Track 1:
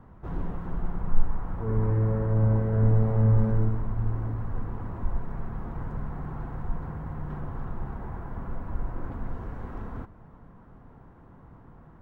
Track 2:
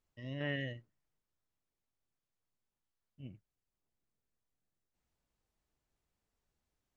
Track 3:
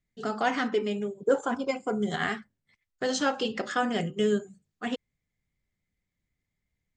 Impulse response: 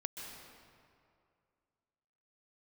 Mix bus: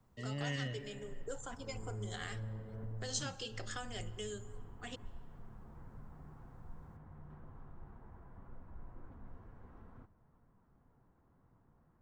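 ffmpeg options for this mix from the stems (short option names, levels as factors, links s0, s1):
-filter_complex "[0:a]flanger=delay=7.5:depth=8:regen=-38:speed=2:shape=triangular,alimiter=limit=0.1:level=0:latency=1:release=423,volume=0.178[s0];[1:a]volume=1.19,asplit=3[s1][s2][s3];[s2]volume=0.398[s4];[2:a]highpass=300,aemphasis=mode=production:type=75kf,volume=0.188,asplit=2[s5][s6];[s6]volume=0.15[s7];[s3]apad=whole_len=529783[s8];[s0][s8]sidechaincompress=threshold=0.00141:ratio=8:attack=16:release=357[s9];[3:a]atrim=start_sample=2205[s10];[s4][s7]amix=inputs=2:normalize=0[s11];[s11][s10]afir=irnorm=-1:irlink=0[s12];[s9][s1][s5][s12]amix=inputs=4:normalize=0,acrossover=split=170|3000[s13][s14][s15];[s14]acompressor=threshold=0.00631:ratio=2.5[s16];[s13][s16][s15]amix=inputs=3:normalize=0"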